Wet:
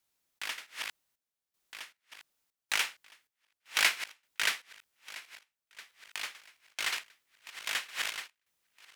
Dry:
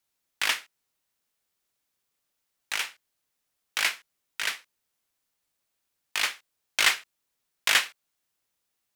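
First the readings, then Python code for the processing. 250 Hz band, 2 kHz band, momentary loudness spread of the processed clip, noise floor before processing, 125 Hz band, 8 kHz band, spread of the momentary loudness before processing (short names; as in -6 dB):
-5.5 dB, -5.0 dB, 22 LU, -80 dBFS, n/a, -5.5 dB, 15 LU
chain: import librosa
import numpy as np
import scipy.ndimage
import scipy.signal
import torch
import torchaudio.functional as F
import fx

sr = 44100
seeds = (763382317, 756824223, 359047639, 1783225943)

y = fx.reverse_delay_fb(x, sr, ms=657, feedback_pct=47, wet_db=-13)
y = fx.step_gate(y, sr, bpm=78, pattern='xx.xxx..xx.', floor_db=-12.0, edge_ms=4.5)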